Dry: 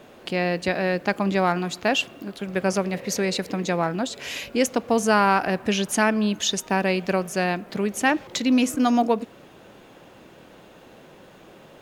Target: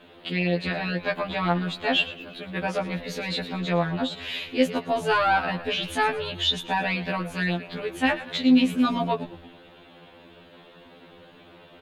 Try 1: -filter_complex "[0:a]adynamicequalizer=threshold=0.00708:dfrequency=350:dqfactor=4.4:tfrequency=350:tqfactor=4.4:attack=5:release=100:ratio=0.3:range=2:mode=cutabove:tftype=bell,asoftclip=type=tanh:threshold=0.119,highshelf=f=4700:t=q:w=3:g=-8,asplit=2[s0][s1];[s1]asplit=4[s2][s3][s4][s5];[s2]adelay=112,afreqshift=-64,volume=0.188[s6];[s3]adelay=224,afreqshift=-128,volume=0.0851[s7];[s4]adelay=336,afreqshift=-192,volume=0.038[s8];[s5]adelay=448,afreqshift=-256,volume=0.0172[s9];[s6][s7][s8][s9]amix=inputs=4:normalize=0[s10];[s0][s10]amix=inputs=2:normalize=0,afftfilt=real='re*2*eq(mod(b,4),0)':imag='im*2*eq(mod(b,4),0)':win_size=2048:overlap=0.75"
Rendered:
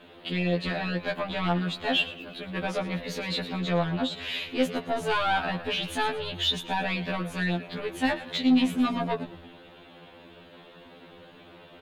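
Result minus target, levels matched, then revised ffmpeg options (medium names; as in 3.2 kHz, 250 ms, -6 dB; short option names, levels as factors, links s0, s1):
saturation: distortion +15 dB
-filter_complex "[0:a]adynamicequalizer=threshold=0.00708:dfrequency=350:dqfactor=4.4:tfrequency=350:tqfactor=4.4:attack=5:release=100:ratio=0.3:range=2:mode=cutabove:tftype=bell,asoftclip=type=tanh:threshold=0.473,highshelf=f=4700:t=q:w=3:g=-8,asplit=2[s0][s1];[s1]asplit=4[s2][s3][s4][s5];[s2]adelay=112,afreqshift=-64,volume=0.188[s6];[s3]adelay=224,afreqshift=-128,volume=0.0851[s7];[s4]adelay=336,afreqshift=-192,volume=0.038[s8];[s5]adelay=448,afreqshift=-256,volume=0.0172[s9];[s6][s7][s8][s9]amix=inputs=4:normalize=0[s10];[s0][s10]amix=inputs=2:normalize=0,afftfilt=real='re*2*eq(mod(b,4),0)':imag='im*2*eq(mod(b,4),0)':win_size=2048:overlap=0.75"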